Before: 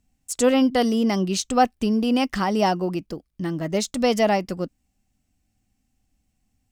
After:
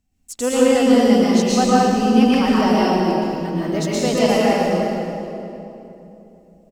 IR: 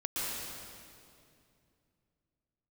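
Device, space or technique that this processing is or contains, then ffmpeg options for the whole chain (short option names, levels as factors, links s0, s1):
stairwell: -filter_complex "[1:a]atrim=start_sample=2205[s0];[0:a][s0]afir=irnorm=-1:irlink=0,equalizer=f=9200:t=o:w=0.27:g=-3,asplit=2[s1][s2];[s2]adelay=466,lowpass=f=1100:p=1,volume=0.237,asplit=2[s3][s4];[s4]adelay=466,lowpass=f=1100:p=1,volume=0.44,asplit=2[s5][s6];[s6]adelay=466,lowpass=f=1100:p=1,volume=0.44,asplit=2[s7][s8];[s8]adelay=466,lowpass=f=1100:p=1,volume=0.44[s9];[s1][s3][s5][s7][s9]amix=inputs=5:normalize=0,volume=0.891"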